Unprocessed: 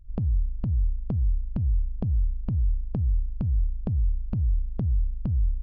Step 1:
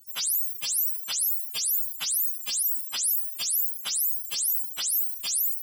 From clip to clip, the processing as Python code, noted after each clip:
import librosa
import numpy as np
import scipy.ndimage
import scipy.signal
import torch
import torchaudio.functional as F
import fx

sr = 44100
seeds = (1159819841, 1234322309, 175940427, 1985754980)

y = fx.octave_mirror(x, sr, pivot_hz=790.0)
y = fx.hum_notches(y, sr, base_hz=60, count=10)
y = y * 10.0 ** (4.5 / 20.0)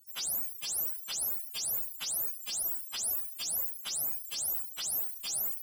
y = fx.tube_stage(x, sr, drive_db=17.0, bias=0.35)
y = y * 10.0 ** (-5.5 / 20.0)